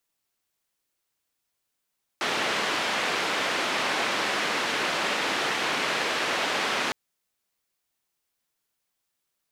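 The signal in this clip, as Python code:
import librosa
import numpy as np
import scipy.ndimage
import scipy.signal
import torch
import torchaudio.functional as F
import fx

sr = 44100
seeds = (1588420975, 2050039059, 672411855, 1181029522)

y = fx.band_noise(sr, seeds[0], length_s=4.71, low_hz=250.0, high_hz=2700.0, level_db=-27.0)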